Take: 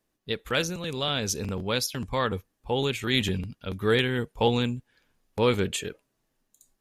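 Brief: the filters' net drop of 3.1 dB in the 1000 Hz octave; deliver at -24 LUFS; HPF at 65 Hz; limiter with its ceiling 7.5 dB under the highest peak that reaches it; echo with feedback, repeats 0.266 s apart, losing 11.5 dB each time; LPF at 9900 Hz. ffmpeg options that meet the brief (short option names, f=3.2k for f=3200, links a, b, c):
-af "highpass=65,lowpass=9.9k,equalizer=f=1k:t=o:g=-4,alimiter=limit=-17dB:level=0:latency=1,aecho=1:1:266|532|798:0.266|0.0718|0.0194,volume=5.5dB"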